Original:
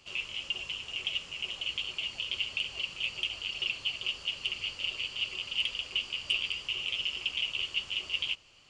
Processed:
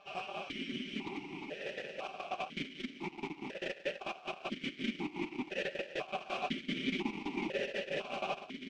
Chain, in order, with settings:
phase distortion by the signal itself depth 0.68 ms
mains-hum notches 60/120/180/240/300/360 Hz
comb filter 7.2 ms, depth 93%
full-wave rectification
phase-vocoder pitch shift with formants kept +6 semitones
on a send: echo that builds up and dies away 124 ms, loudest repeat 8, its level −17 dB
on the sum: sine wavefolder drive 12 dB, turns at −16.5 dBFS
high-frequency loss of the air 140 metres
formant filter that steps through the vowels 2 Hz
level +3.5 dB

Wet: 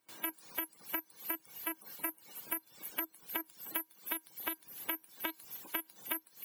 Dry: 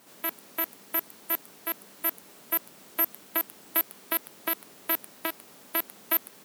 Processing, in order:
spectral magnitudes quantised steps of 30 dB
tuned comb filter 320 Hz, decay 0.15 s, harmonics odd, mix 80%
noise gate with hold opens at −55 dBFS
on a send: delay with a high-pass on its return 305 ms, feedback 78%, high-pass 2,900 Hz, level −19.5 dB
on the sum: downward compressor 20 to 1, threshold −46 dBFS, peak gain reduction 18 dB
reverb reduction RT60 1.3 s
level +13 dB

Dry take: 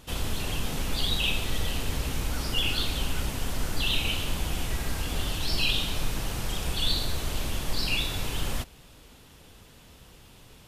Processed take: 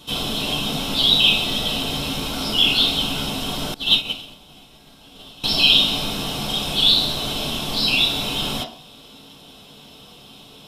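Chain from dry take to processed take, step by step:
high shelf with overshoot 2,600 Hz +10.5 dB, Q 3
hollow resonant body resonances 720/3,900 Hz, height 10 dB, ringing for 65 ms
convolution reverb RT60 0.45 s, pre-delay 3 ms, DRR −4.5 dB
0:03.74–0:05.44: expander for the loud parts 2.5 to 1, over −19 dBFS
level −7 dB

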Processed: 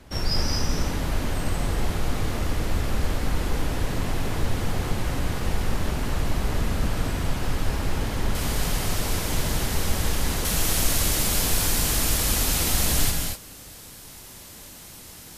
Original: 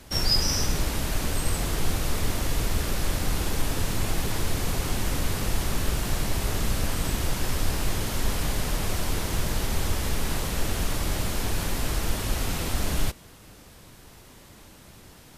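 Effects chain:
high-shelf EQ 3,700 Hz −9.5 dB, from 0:08.35 +2 dB, from 0:10.45 +11 dB
reverb whose tail is shaped and stops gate 270 ms rising, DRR 2.5 dB

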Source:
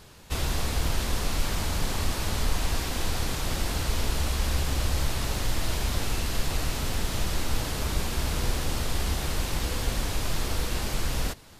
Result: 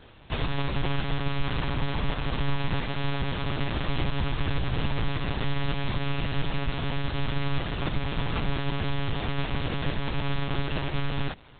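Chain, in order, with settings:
one-pitch LPC vocoder at 8 kHz 140 Hz

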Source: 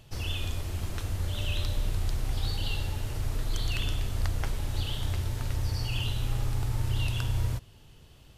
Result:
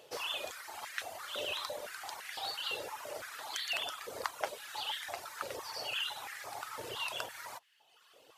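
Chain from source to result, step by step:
reverb reduction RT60 1.1 s
high-pass on a step sequencer 5.9 Hz 490–1,800 Hz

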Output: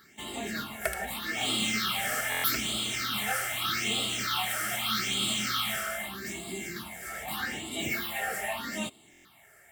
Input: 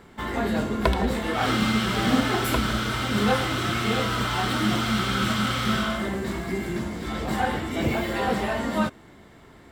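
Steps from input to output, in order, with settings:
spectral tilt +4 dB per octave
all-pass phaser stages 6, 0.81 Hz, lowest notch 260–1,600 Hz
notch comb filter 500 Hz
buffer that repeats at 0:02.30/0:09.11, samples 1,024, times 5
level −3 dB

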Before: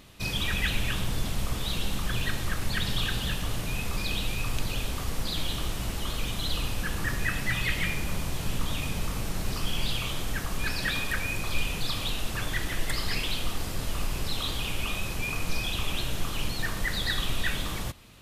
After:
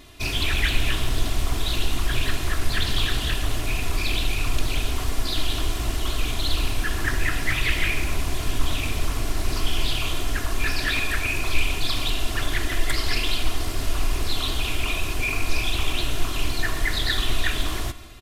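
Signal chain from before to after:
comb filter 2.9 ms, depth 77%
convolution reverb RT60 1.3 s, pre-delay 107 ms, DRR 15.5 dB
highs frequency-modulated by the lows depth 0.44 ms
level +3 dB

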